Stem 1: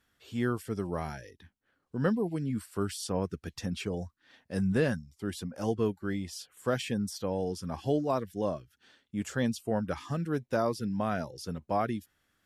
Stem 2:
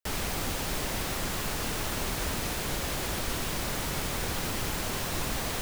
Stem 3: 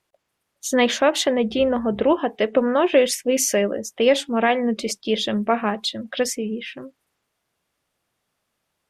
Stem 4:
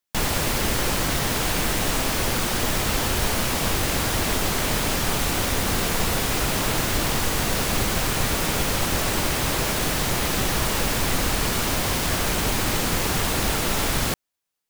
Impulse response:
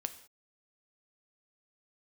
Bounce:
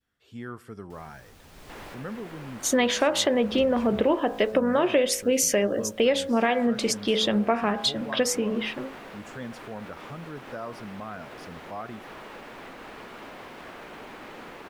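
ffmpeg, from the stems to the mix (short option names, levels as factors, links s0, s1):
-filter_complex "[0:a]adynamicequalizer=threshold=0.00562:dfrequency=1300:dqfactor=0.85:tfrequency=1300:tqfactor=0.85:attack=5:release=100:ratio=0.375:range=3.5:mode=boostabove:tftype=bell,volume=0.355,asplit=3[s0][s1][s2];[s1]volume=0.562[s3];[1:a]adelay=850,volume=0.251,asplit=2[s4][s5];[s5]volume=0.2[s6];[2:a]bandreject=f=54.49:t=h:w=4,bandreject=f=108.98:t=h:w=4,bandreject=f=163.47:t=h:w=4,bandreject=f=217.96:t=h:w=4,bandreject=f=272.45:t=h:w=4,bandreject=f=326.94:t=h:w=4,bandreject=f=381.43:t=h:w=4,bandreject=f=435.92:t=h:w=4,bandreject=f=490.41:t=h:w=4,bandreject=f=544.9:t=h:w=4,bandreject=f=599.39:t=h:w=4,bandreject=f=653.88:t=h:w=4,bandreject=f=708.37:t=h:w=4,bandreject=f=762.86:t=h:w=4,bandreject=f=817.35:t=h:w=4,bandreject=f=871.84:t=h:w=4,bandreject=f=926.33:t=h:w=4,bandreject=f=980.82:t=h:w=4,bandreject=f=1035.31:t=h:w=4,bandreject=f=1089.8:t=h:w=4,bandreject=f=1144.29:t=h:w=4,bandreject=f=1198.78:t=h:w=4,bandreject=f=1253.27:t=h:w=4,bandreject=f=1307.76:t=h:w=4,bandreject=f=1362.25:t=h:w=4,bandreject=f=1416.74:t=h:w=4,bandreject=f=1471.23:t=h:w=4,bandreject=f=1525.72:t=h:w=4,bandreject=f=1580.21:t=h:w=4,bandreject=f=1634.7:t=h:w=4,bandreject=f=1689.19:t=h:w=4,adelay=2000,volume=1.26[s7];[3:a]acrossover=split=220 3100:gain=0.112 1 0.178[s8][s9][s10];[s8][s9][s10]amix=inputs=3:normalize=0,adelay=1550,volume=0.158,asplit=3[s11][s12][s13];[s11]atrim=end=4.2,asetpts=PTS-STARTPTS,afade=t=out:st=4.196:d=0.004:c=hsin[s14];[s12]atrim=start=4.2:end=6.43,asetpts=PTS-STARTPTS,volume=0[s15];[s13]atrim=start=6.43,asetpts=PTS-STARTPTS,afade=t=in:d=0.004:c=hsin[s16];[s14][s15][s16]concat=n=3:v=0:a=1,asplit=2[s17][s18];[s18]volume=0.335[s19];[s2]apad=whole_len=284969[s20];[s4][s20]sidechaincompress=threshold=0.00141:ratio=8:attack=5.7:release=469[s21];[s0][s21][s17]amix=inputs=3:normalize=0,highshelf=f=5700:g=-11.5,alimiter=level_in=3.55:limit=0.0631:level=0:latency=1:release=118,volume=0.282,volume=1[s22];[4:a]atrim=start_sample=2205[s23];[s3][s6][s19]amix=inputs=3:normalize=0[s24];[s24][s23]afir=irnorm=-1:irlink=0[s25];[s7][s22][s25]amix=inputs=3:normalize=0,acompressor=threshold=0.1:ratio=3"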